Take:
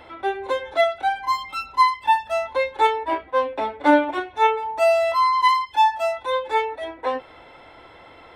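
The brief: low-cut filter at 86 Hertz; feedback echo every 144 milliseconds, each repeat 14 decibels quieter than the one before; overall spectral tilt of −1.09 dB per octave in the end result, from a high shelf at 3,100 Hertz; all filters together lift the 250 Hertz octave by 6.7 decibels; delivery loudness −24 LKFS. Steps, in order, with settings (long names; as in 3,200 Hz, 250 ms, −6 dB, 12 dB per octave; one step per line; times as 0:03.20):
high-pass filter 86 Hz
parametric band 250 Hz +8.5 dB
high-shelf EQ 3,100 Hz −6.5 dB
repeating echo 144 ms, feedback 20%, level −14 dB
level −3.5 dB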